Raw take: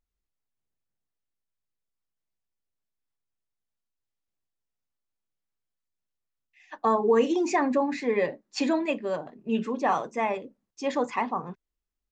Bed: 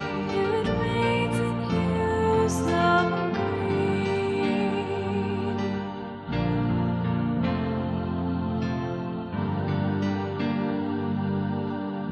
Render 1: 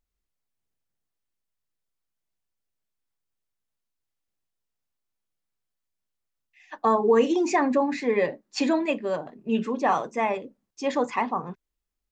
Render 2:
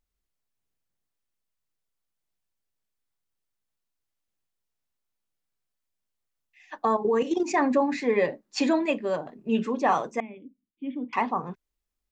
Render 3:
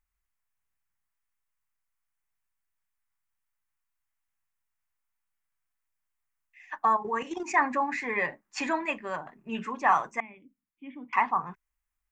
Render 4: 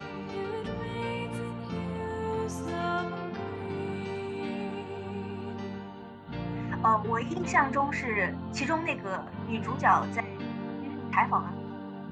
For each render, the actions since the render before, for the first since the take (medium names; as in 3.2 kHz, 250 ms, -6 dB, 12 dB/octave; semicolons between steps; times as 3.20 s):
trim +2 dB
6.85–7.57 s: level held to a coarse grid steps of 11 dB; 10.20–11.13 s: cascade formant filter i
graphic EQ 125/250/500/1000/2000/4000 Hz -3/-8/-12/+5/+6/-10 dB
add bed -9.5 dB